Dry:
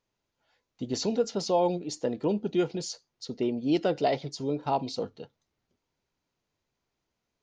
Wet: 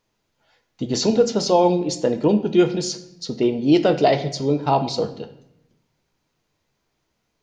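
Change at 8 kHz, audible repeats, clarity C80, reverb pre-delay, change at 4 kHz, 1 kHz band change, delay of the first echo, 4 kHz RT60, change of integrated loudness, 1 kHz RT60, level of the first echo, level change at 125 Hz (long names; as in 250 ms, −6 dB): +9.5 dB, no echo audible, 15.0 dB, 6 ms, +9.5 dB, +9.0 dB, no echo audible, 0.65 s, +9.5 dB, 0.80 s, no echo audible, +11.0 dB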